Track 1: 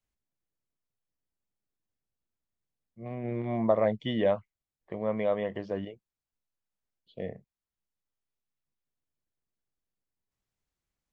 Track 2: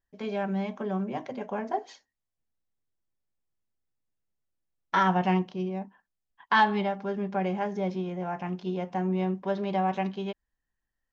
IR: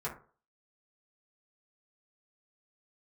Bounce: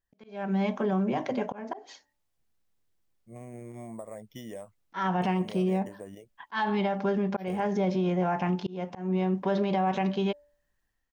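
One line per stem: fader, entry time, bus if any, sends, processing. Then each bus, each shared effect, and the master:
−4.0 dB, 0.30 s, no send, downward compressor 6 to 1, threshold −35 dBFS, peak gain reduction 15.5 dB; decimation without filtering 5×
−1.5 dB, 0.00 s, no send, hum removal 291.4 Hz, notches 3; volume swells 391 ms; automatic gain control gain up to 9 dB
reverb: not used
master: brickwall limiter −19.5 dBFS, peak gain reduction 11.5 dB

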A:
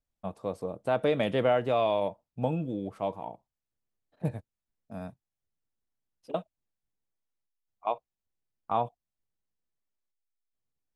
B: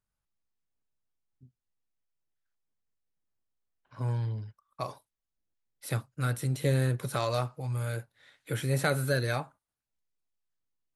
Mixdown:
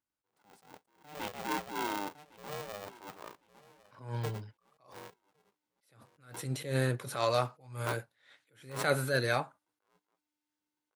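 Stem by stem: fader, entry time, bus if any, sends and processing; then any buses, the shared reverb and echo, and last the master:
−13.5 dB, 0.00 s, no send, echo send −21 dB, ring modulator with a square carrier 300 Hz
−3.0 dB, 0.00 s, no send, no echo send, high-shelf EQ 10,000 Hz −8 dB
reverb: not used
echo: repeating echo 1,107 ms, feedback 24%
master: automatic gain control gain up to 6 dB; high-pass filter 280 Hz 6 dB per octave; level that may rise only so fast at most 120 dB per second

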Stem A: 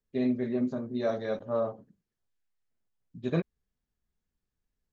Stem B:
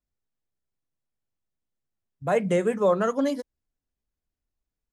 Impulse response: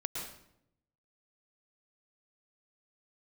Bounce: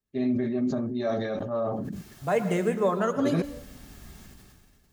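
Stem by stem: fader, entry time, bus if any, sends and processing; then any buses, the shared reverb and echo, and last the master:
+1.0 dB, 0.00 s, no send, notch comb filter 490 Hz; level that may fall only so fast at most 27 dB per second
−4.5 dB, 0.00 s, send −6.5 dB, bit reduction 11 bits; notch filter 530 Hz, Q 12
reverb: on, RT60 0.75 s, pre-delay 104 ms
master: no processing

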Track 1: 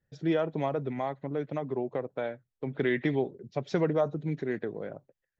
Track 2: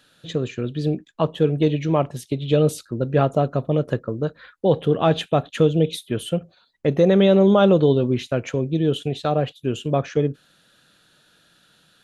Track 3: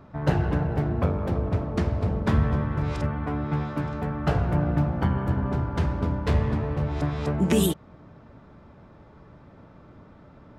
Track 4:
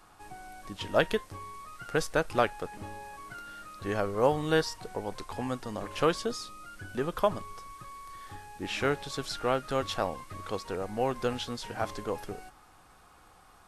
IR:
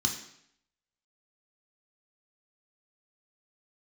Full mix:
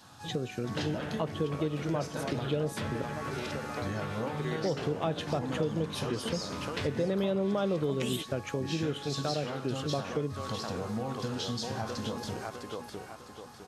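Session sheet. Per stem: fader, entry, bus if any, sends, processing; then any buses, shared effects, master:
−6.0 dB, 1.60 s, no send, no echo send, no processing
−3.5 dB, 0.00 s, muted 0:03.02–0:04.48, no send, no echo send, no processing
−7.0 dB, 0.50 s, no send, no echo send, meter weighting curve D
+2.0 dB, 0.00 s, send −5.5 dB, echo send −4.5 dB, downward compressor, threshold −32 dBFS, peak gain reduction 13 dB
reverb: on, RT60 0.70 s, pre-delay 3 ms
echo: repeating echo 655 ms, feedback 38%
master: high-pass filter 84 Hz; downward compressor 2.5 to 1, threshold −32 dBFS, peak gain reduction 12 dB

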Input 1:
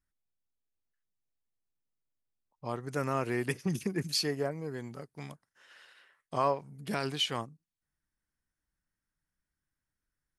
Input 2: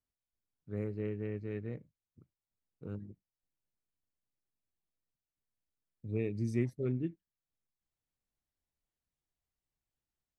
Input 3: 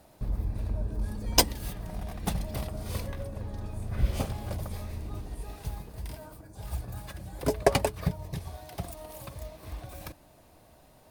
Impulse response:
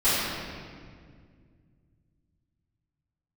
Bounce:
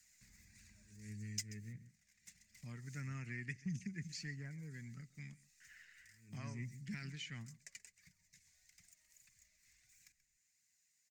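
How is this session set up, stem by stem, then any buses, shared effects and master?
−2.0 dB, 0.00 s, no send, echo send −22 dB, noise gate with hold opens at −54 dBFS; high-shelf EQ 4,000 Hz −10 dB
−3.0 dB, 0.00 s, no send, echo send −16.5 dB, level that may rise only so fast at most 120 dB per second
0:01.03 −1 dB → 0:01.77 −13 dB, 0.00 s, no send, echo send −18 dB, first difference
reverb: not used
echo: single-tap delay 132 ms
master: drawn EQ curve 210 Hz 0 dB, 350 Hz −17 dB, 530 Hz −26 dB, 1,100 Hz −23 dB, 2,000 Hz +5 dB, 3,300 Hz −11 dB, 7,100 Hz +7 dB, 10,000 Hz −17 dB; flanger 1.6 Hz, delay 0.6 ms, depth 1.8 ms, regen +59%; multiband upward and downward compressor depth 40%

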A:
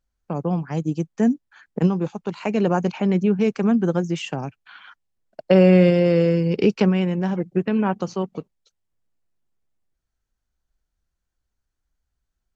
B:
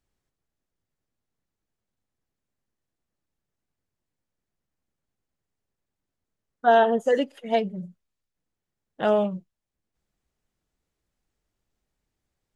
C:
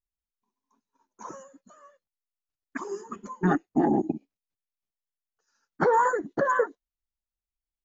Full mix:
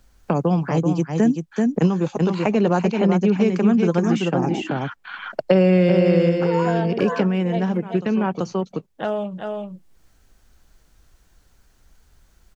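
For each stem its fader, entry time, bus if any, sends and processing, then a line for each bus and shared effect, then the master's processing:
+1.5 dB, 0.00 s, no send, echo send −5.5 dB, automatic ducking −23 dB, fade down 0.35 s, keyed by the second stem
−11.0 dB, 0.00 s, no send, echo send −8.5 dB, no processing
−7.0 dB, 0.60 s, no send, no echo send, no processing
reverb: not used
echo: single-tap delay 384 ms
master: multiband upward and downward compressor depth 70%

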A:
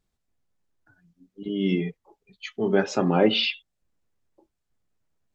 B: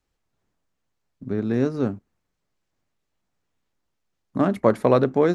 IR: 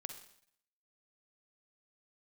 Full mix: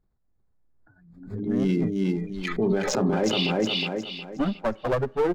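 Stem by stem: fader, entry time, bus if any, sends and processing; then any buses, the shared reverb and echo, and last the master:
0.0 dB, 0.00 s, no send, echo send −3 dB, adaptive Wiener filter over 15 samples; low-shelf EQ 150 Hz +5.5 dB; background raised ahead of every attack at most 60 dB per second
+2.5 dB, 0.00 s, send −14 dB, no echo send, spectral dynamics exaggerated over time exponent 3; low-pass filter 1,600 Hz 24 dB per octave; asymmetric clip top −30 dBFS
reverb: on, RT60 0.65 s, pre-delay 42 ms
echo: repeating echo 362 ms, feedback 33%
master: brickwall limiter −14.5 dBFS, peak gain reduction 9 dB

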